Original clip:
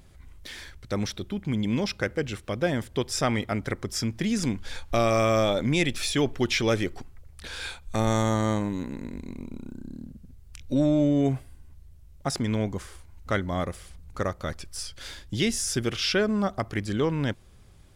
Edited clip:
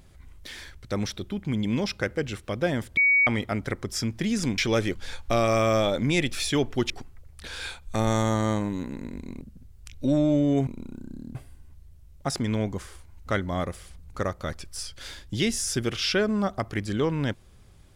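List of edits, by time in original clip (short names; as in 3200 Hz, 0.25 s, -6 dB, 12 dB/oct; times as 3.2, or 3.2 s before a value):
2.97–3.27 bleep 2250 Hz -16.5 dBFS
6.53–6.9 move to 4.58
9.41–10.09 move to 11.35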